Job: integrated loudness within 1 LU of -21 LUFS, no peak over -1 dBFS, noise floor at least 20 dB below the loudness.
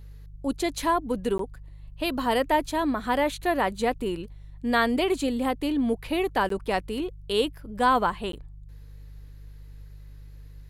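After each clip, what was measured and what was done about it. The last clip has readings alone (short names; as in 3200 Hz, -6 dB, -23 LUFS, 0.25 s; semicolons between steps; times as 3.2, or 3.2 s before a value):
dropouts 3; longest dropout 13 ms; hum 50 Hz; harmonics up to 150 Hz; hum level -41 dBFS; loudness -26.5 LUFS; peak -9.5 dBFS; loudness target -21.0 LUFS
-> interpolate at 1.38/6.49/8.32, 13 ms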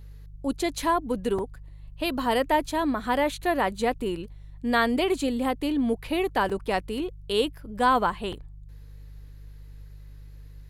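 dropouts 0; hum 50 Hz; harmonics up to 150 Hz; hum level -41 dBFS
-> de-hum 50 Hz, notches 3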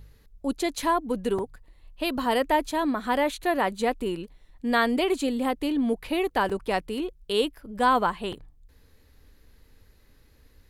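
hum none; loudness -26.5 LUFS; peak -9.5 dBFS; loudness target -21.0 LUFS
-> gain +5.5 dB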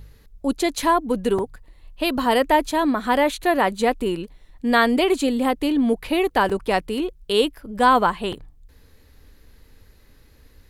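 loudness -21.0 LUFS; peak -4.0 dBFS; noise floor -53 dBFS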